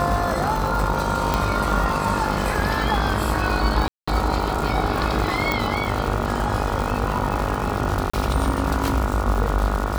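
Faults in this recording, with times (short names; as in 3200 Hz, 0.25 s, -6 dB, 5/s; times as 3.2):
buzz 50 Hz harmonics 29 -27 dBFS
crackle 280/s -25 dBFS
1.34 pop
3.88–4.08 gap 0.195 s
5.52 pop
8.1–8.13 gap 35 ms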